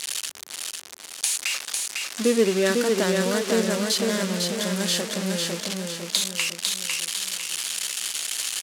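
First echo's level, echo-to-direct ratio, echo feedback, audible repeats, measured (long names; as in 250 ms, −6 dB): −3.5 dB, −2.5 dB, 43%, 5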